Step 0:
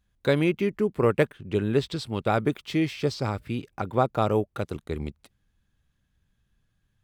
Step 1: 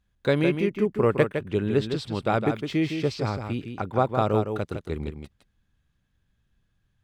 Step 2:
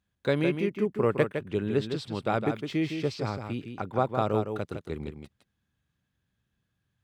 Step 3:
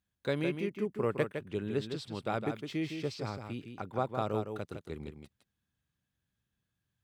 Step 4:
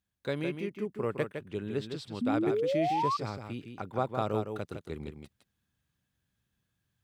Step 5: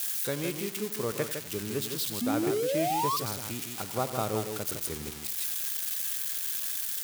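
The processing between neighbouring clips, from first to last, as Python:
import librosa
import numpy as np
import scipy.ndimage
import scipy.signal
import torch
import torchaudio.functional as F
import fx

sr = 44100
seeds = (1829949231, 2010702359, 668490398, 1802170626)

y1 = fx.high_shelf(x, sr, hz=9000.0, db=-9.0)
y1 = y1 + 10.0 ** (-7.0 / 20.0) * np.pad(y1, (int(160 * sr / 1000.0), 0))[:len(y1)]
y2 = scipy.signal.sosfilt(scipy.signal.butter(2, 88.0, 'highpass', fs=sr, output='sos'), y1)
y2 = y2 * librosa.db_to_amplitude(-3.5)
y3 = fx.high_shelf(y2, sr, hz=4400.0, db=5.0)
y3 = y3 * librosa.db_to_amplitude(-6.5)
y4 = fx.rider(y3, sr, range_db=4, speed_s=2.0)
y4 = fx.spec_paint(y4, sr, seeds[0], shape='rise', start_s=2.21, length_s=0.96, low_hz=230.0, high_hz=1200.0, level_db=-29.0)
y5 = y4 + 0.5 * 10.0 ** (-23.5 / 20.0) * np.diff(np.sign(y4), prepend=np.sign(y4[:1]))
y5 = y5 + 10.0 ** (-14.5 / 20.0) * np.pad(y5, (int(90 * sr / 1000.0), 0))[:len(y5)]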